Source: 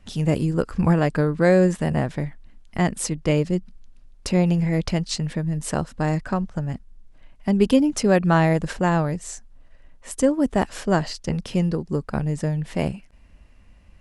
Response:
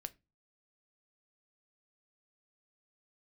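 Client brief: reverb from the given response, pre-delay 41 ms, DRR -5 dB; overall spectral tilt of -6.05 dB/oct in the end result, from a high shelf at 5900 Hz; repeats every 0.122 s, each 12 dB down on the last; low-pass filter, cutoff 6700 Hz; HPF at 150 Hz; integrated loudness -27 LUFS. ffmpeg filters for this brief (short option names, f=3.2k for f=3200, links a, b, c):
-filter_complex "[0:a]highpass=150,lowpass=6.7k,highshelf=f=5.9k:g=6.5,aecho=1:1:122|244|366:0.251|0.0628|0.0157,asplit=2[a][b];[1:a]atrim=start_sample=2205,adelay=41[c];[b][c]afir=irnorm=-1:irlink=0,volume=8.5dB[d];[a][d]amix=inputs=2:normalize=0,volume=-10dB"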